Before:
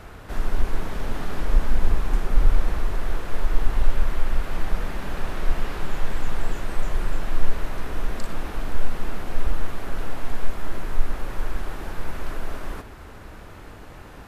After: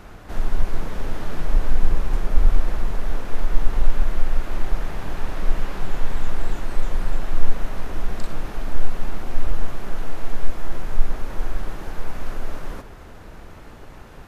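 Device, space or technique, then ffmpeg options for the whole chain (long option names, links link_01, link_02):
octave pedal: -filter_complex "[0:a]asettb=1/sr,asplit=3[link_01][link_02][link_03];[link_01]atrim=end=9.754[link_04];[link_02]atrim=start=9.75:end=10.36,asetpts=PTS-STARTPTS,afade=type=in:duration=0.004:curve=qsin,afade=type=out:start_time=0.606:duration=0.004:curve=qsin,equalizer=frequency=82:width_type=o:width=1.8:gain=-5.5[link_05];[link_03]atrim=start=10.356[link_06];[link_04][link_05]acrossfade=duration=0.004:curve1=hsin:curve2=qsin[link_07];[link_07][link_06]acrossfade=duration=0.004:curve1=qsin:curve2=hsin,asplit=2[link_08][link_09];[link_09]asetrate=22050,aresample=44100,atempo=2,volume=-1dB[link_10];[link_08][link_10]amix=inputs=2:normalize=0,volume=-2dB"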